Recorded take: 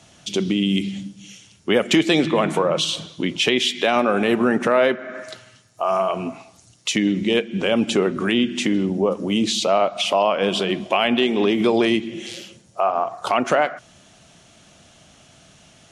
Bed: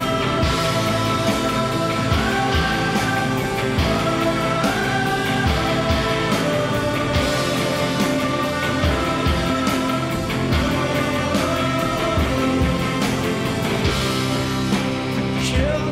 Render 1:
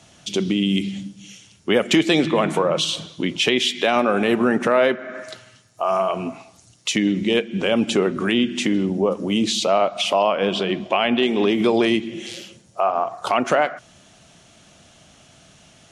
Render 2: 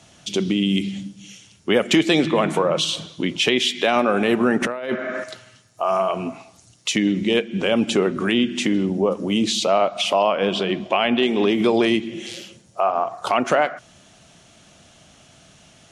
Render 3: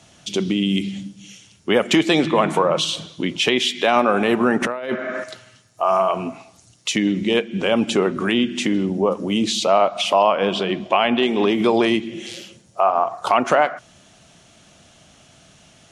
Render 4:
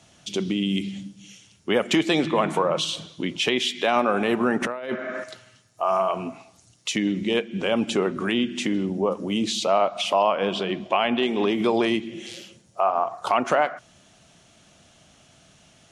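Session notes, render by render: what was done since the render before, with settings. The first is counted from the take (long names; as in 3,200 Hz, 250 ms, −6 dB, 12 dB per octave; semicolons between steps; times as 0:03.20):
0:10.31–0:11.23: high-frequency loss of the air 80 metres
0:04.62–0:05.24: compressor whose output falls as the input rises −22 dBFS, ratio −0.5
dynamic equaliser 970 Hz, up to +5 dB, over −31 dBFS, Q 1.5
level −4.5 dB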